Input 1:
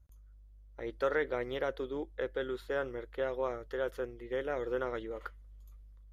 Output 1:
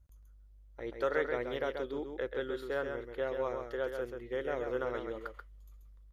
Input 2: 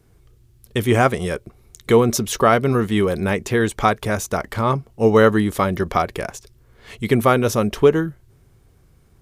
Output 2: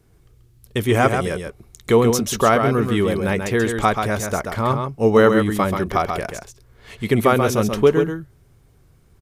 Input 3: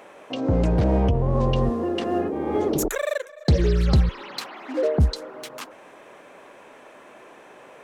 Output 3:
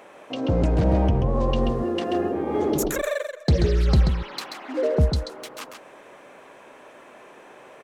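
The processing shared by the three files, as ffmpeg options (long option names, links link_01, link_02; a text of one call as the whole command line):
ffmpeg -i in.wav -af "aecho=1:1:134:0.501,volume=-1dB" out.wav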